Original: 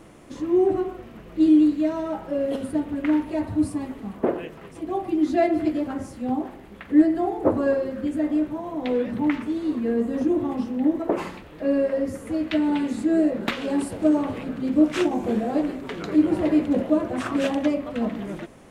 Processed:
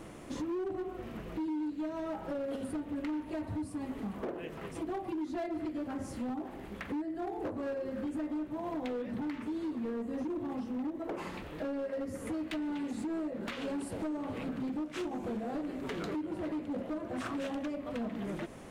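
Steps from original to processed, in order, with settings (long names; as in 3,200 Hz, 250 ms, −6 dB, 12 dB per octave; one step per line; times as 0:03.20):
downward compressor 6 to 1, threshold −33 dBFS, peak gain reduction 20.5 dB
hard clipping −32 dBFS, distortion −14 dB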